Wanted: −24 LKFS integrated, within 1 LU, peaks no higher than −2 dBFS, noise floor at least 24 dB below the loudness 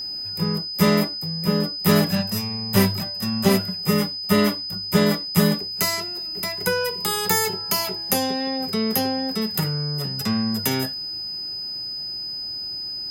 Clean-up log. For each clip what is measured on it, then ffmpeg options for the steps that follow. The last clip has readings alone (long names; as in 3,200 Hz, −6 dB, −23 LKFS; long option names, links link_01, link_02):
interfering tone 5,000 Hz; level of the tone −28 dBFS; integrated loudness −22.5 LKFS; sample peak −4.0 dBFS; target loudness −24.0 LKFS
→ -af "bandreject=frequency=5000:width=30"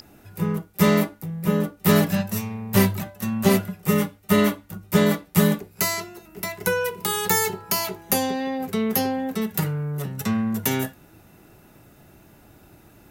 interfering tone none found; integrated loudness −23.0 LKFS; sample peak −4.5 dBFS; target loudness −24.0 LKFS
→ -af "volume=-1dB"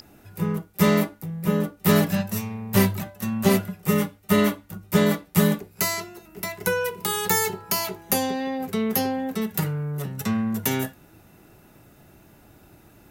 integrated loudness −24.0 LKFS; sample peak −5.5 dBFS; background noise floor −54 dBFS